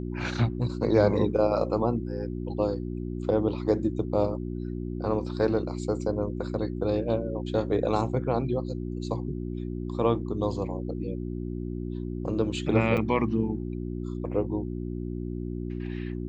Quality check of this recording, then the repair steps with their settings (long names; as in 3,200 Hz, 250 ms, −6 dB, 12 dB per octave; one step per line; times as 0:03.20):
mains hum 60 Hz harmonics 6 −33 dBFS
0:12.97–0:12.98: drop-out 6.4 ms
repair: hum removal 60 Hz, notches 6
repair the gap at 0:12.97, 6.4 ms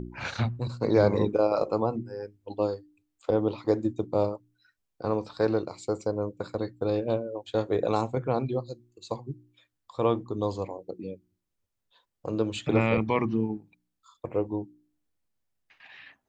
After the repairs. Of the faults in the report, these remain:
none of them is left